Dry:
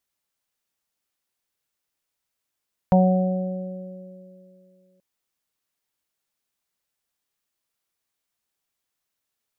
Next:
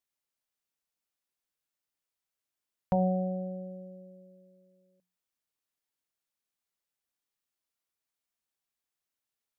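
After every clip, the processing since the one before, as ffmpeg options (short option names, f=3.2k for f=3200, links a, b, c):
-af "bandreject=f=60:t=h:w=6,bandreject=f=120:t=h:w=6,bandreject=f=180:t=h:w=6,volume=-8dB"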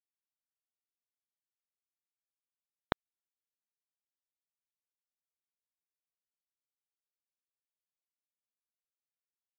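-af "acompressor=threshold=-36dB:ratio=6,aresample=8000,acrusher=bits=3:mix=0:aa=0.000001,aresample=44100,volume=7.5dB"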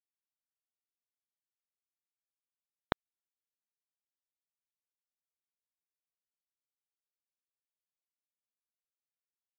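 -af anull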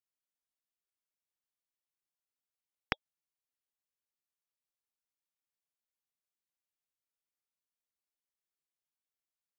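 -af "asuperstop=centerf=2100:order=20:qfactor=7.9,aeval=exprs='val(0)*sin(2*PI*1900*n/s+1900*0.3/3.2*sin(2*PI*3.2*n/s))':c=same,volume=1dB"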